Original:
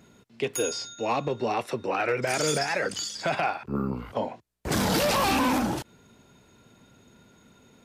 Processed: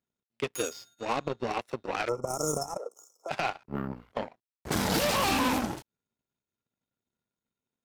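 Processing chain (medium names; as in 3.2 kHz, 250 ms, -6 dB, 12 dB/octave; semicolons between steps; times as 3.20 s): power-law waveshaper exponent 2; 2.77–3.31 s: ladder high-pass 390 Hz, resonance 55%; 2.08–3.29 s: time-frequency box 1.4–5.2 kHz -30 dB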